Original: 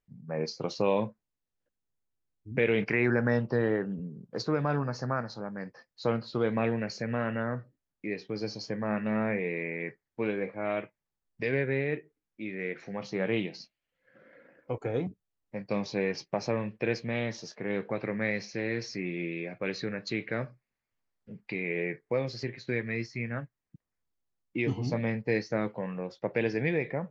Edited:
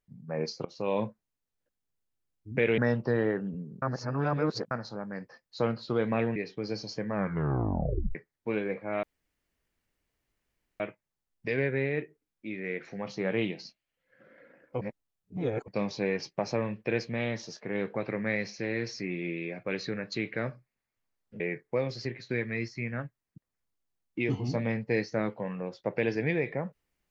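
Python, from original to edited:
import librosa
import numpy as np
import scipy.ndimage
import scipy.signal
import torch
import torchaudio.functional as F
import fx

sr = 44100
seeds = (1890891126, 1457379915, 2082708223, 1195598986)

y = fx.edit(x, sr, fx.fade_in_from(start_s=0.65, length_s=0.39, floor_db=-22.0),
    fx.cut(start_s=2.78, length_s=0.45),
    fx.reverse_span(start_s=4.27, length_s=0.89),
    fx.cut(start_s=6.81, length_s=1.27),
    fx.tape_stop(start_s=8.86, length_s=1.01),
    fx.insert_room_tone(at_s=10.75, length_s=1.77),
    fx.reverse_span(start_s=14.76, length_s=0.87),
    fx.cut(start_s=21.35, length_s=0.43), tone=tone)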